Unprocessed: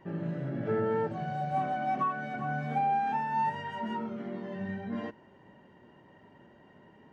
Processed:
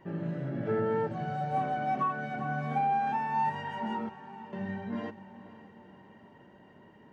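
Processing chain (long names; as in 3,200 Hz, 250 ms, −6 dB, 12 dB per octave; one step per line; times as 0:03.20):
0:04.09–0:04.53: stiff-string resonator 89 Hz, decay 0.61 s, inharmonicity 0.008
feedback delay with all-pass diffusion 516 ms, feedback 54%, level −15.5 dB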